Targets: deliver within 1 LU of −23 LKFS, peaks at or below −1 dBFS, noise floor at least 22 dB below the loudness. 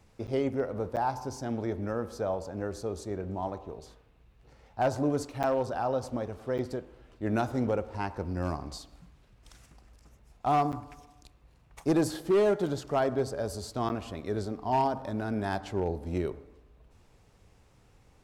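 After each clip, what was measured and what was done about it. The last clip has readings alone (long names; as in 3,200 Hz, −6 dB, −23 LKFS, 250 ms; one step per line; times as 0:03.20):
share of clipped samples 0.5%; peaks flattened at −19.5 dBFS; number of dropouts 6; longest dropout 8.3 ms; integrated loudness −31.5 LKFS; sample peak −19.5 dBFS; target loudness −23.0 LKFS
→ clipped peaks rebuilt −19.5 dBFS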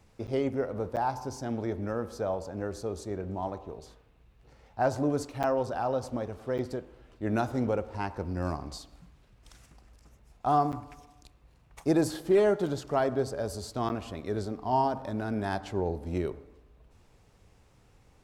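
share of clipped samples 0.0%; number of dropouts 6; longest dropout 8.3 ms
→ repair the gap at 0:00.27/0:00.96/0:05.43/0:06.58/0:10.72/0:13.89, 8.3 ms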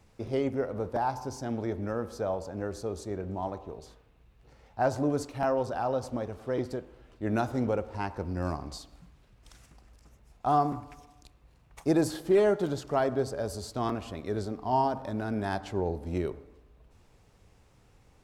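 number of dropouts 0; integrated loudness −31.0 LKFS; sample peak −14.5 dBFS; target loudness −23.0 LKFS
→ level +8 dB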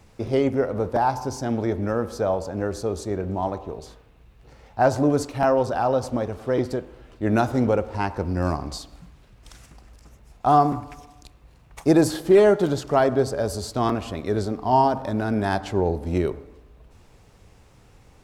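integrated loudness −23.0 LKFS; sample peak −6.5 dBFS; background noise floor −54 dBFS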